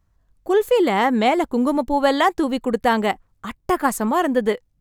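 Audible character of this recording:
background noise floor −66 dBFS
spectral slope −3.0 dB per octave

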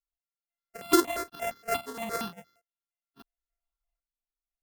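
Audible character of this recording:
a buzz of ramps at a fixed pitch in blocks of 64 samples
sample-and-hold tremolo 2 Hz, depth 80%
notches that jump at a steady rate 8.6 Hz 660–2,600 Hz

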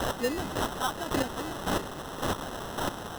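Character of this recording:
a quantiser's noise floor 6 bits, dither triangular
chopped level 1.8 Hz, depth 65%, duty 20%
phaser sweep stages 4, 1.1 Hz, lowest notch 410–2,100 Hz
aliases and images of a low sample rate 2,300 Hz, jitter 0%

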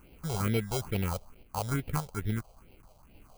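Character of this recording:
a quantiser's noise floor 10 bits, dither triangular
sample-and-hold tremolo
aliases and images of a low sample rate 1,800 Hz, jitter 0%
phaser sweep stages 4, 2.3 Hz, lowest notch 280–1,200 Hz

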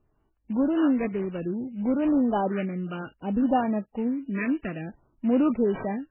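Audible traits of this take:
phaser sweep stages 6, 0.6 Hz, lowest notch 740–3,000 Hz
aliases and images of a low sample rate 4,400 Hz, jitter 20%
MP3

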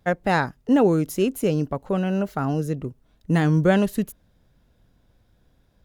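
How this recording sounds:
background noise floor −63 dBFS
spectral slope −5.5 dB per octave

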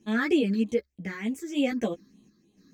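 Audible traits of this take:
phaser sweep stages 6, 3.3 Hz, lowest notch 750–1,500 Hz
sample-and-hold tremolo
a shimmering, thickened sound

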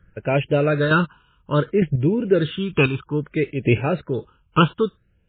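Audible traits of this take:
chopped level 1.1 Hz, depth 60%, duty 15%
phaser sweep stages 8, 0.61 Hz, lowest notch 550–1,200 Hz
MP3

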